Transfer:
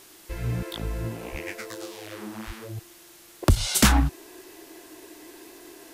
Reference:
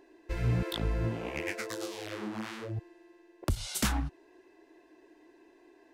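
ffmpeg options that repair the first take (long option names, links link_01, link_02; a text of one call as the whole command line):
ffmpeg -i in.wav -filter_complex "[0:a]asplit=3[link_01][link_02][link_03];[link_01]afade=type=out:start_time=1.31:duration=0.02[link_04];[link_02]highpass=frequency=140:width=0.5412,highpass=frequency=140:width=1.3066,afade=type=in:start_time=1.31:duration=0.02,afade=type=out:start_time=1.43:duration=0.02[link_05];[link_03]afade=type=in:start_time=1.43:duration=0.02[link_06];[link_04][link_05][link_06]amix=inputs=3:normalize=0,asplit=3[link_07][link_08][link_09];[link_07]afade=type=out:start_time=2.46:duration=0.02[link_10];[link_08]highpass=frequency=140:width=0.5412,highpass=frequency=140:width=1.3066,afade=type=in:start_time=2.46:duration=0.02,afade=type=out:start_time=2.58:duration=0.02[link_11];[link_09]afade=type=in:start_time=2.58:duration=0.02[link_12];[link_10][link_11][link_12]amix=inputs=3:normalize=0,afwtdn=0.0032,asetnsamples=nb_out_samples=441:pad=0,asendcmd='3.42 volume volume -11.5dB',volume=0dB" out.wav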